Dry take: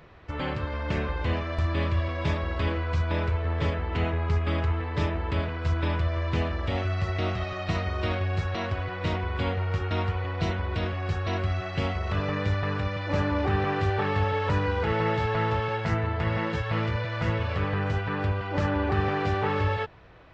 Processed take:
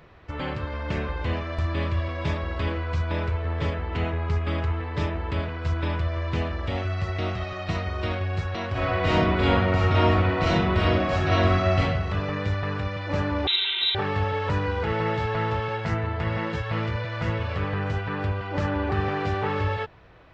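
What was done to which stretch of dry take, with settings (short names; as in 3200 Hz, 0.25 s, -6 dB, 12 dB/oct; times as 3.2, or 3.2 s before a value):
8.71–11.79 reverb throw, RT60 1 s, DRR -8.5 dB
13.47–13.95 inverted band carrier 3900 Hz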